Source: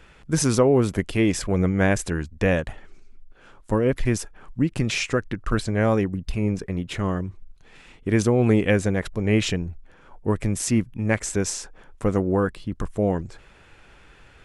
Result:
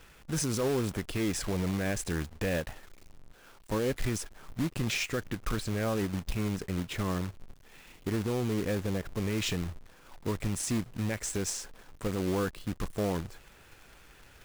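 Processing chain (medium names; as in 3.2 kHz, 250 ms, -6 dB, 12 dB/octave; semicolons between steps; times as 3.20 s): 2.57–4.05 s: bass shelf 200 Hz -3 dB; 8.12–9.14 s: Bessel low-pass 1.3 kHz; peak limiter -15.5 dBFS, peak gain reduction 9 dB; companded quantiser 4-bit; trim -5.5 dB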